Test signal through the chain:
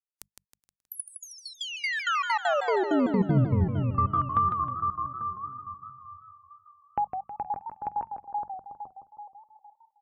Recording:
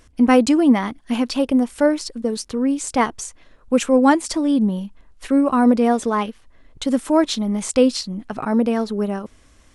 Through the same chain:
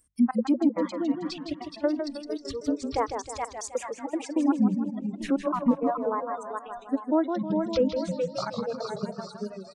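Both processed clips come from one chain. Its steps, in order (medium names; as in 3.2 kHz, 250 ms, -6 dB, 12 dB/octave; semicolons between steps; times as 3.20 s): peaking EQ 3.3 kHz -3.5 dB 0.85 oct; compression 1.5:1, threshold -33 dBFS; high-pass 73 Hz 6 dB/octave; tone controls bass +9 dB, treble +5 dB; feedback delay 422 ms, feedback 49%, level -4.5 dB; reverb removal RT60 1.2 s; trance gate "x.xx.xx.x.x" 196 bpm -24 dB; low-pass that closes with the level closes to 1.3 kHz, closed at -19.5 dBFS; hum notches 50/100/150/200 Hz; spectral noise reduction 24 dB; modulated delay 158 ms, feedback 45%, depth 163 cents, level -7 dB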